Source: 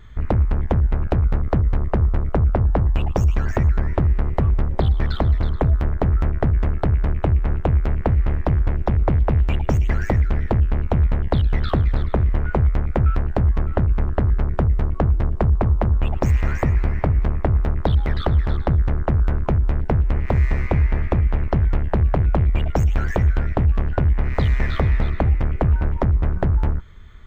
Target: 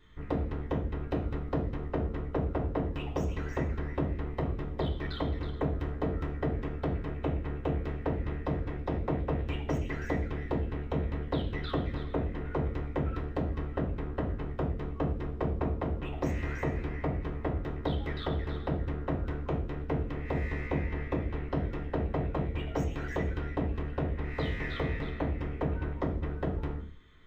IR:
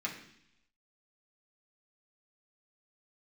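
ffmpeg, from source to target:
-filter_complex "[1:a]atrim=start_sample=2205,afade=t=out:st=0.35:d=0.01,atrim=end_sample=15876,asetrate=66150,aresample=44100[a];[0:a][a]afir=irnorm=-1:irlink=0,volume=-7dB"

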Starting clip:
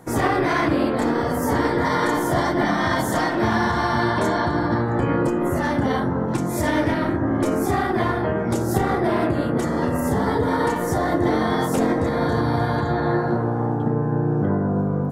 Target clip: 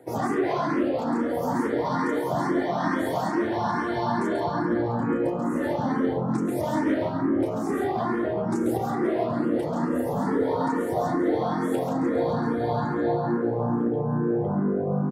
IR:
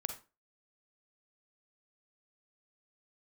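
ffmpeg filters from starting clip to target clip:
-filter_complex "[0:a]highpass=170,highshelf=f=9.2k:g=-4,acrossover=split=990[a][b];[a]acontrast=79[c];[c][b]amix=inputs=2:normalize=0,alimiter=limit=-9dB:level=0:latency=1:release=368,aecho=1:1:137|174.9:0.631|0.282,asplit=2[d][e];[e]afreqshift=2.3[f];[d][f]amix=inputs=2:normalize=1,volume=-6dB"

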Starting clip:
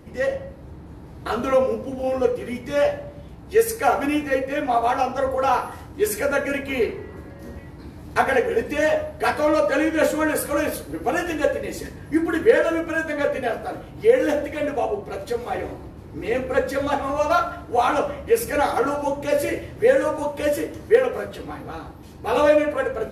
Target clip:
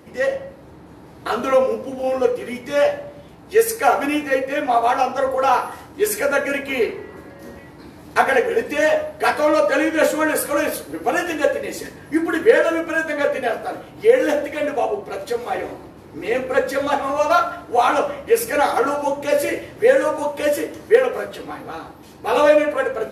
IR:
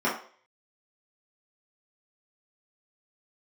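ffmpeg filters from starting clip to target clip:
-af "highpass=f=320:p=1,volume=4dB"

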